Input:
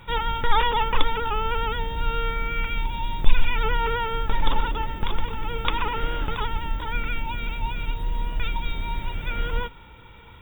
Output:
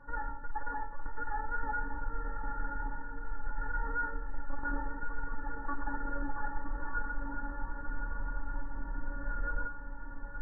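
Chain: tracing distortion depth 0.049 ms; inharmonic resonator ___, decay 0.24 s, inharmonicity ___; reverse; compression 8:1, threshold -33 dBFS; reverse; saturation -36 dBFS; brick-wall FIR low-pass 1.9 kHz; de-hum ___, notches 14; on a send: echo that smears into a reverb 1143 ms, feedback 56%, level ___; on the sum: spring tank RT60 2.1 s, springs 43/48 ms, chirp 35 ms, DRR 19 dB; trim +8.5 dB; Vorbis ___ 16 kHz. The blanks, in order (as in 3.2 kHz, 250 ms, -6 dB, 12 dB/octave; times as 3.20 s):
280 Hz, 0.002, 85.04 Hz, -6.5 dB, 48 kbps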